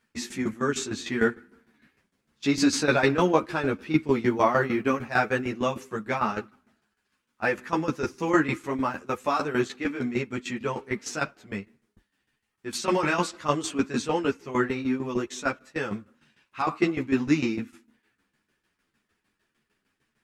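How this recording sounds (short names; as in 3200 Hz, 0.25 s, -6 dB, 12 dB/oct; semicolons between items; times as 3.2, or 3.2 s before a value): tremolo saw down 6.6 Hz, depth 80%; a shimmering, thickened sound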